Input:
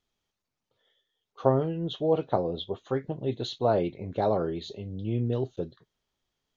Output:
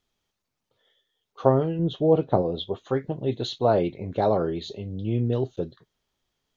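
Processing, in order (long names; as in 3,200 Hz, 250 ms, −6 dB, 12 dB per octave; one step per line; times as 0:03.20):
0:01.79–0:02.42: tilt shelving filter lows +5 dB, about 650 Hz
level +3.5 dB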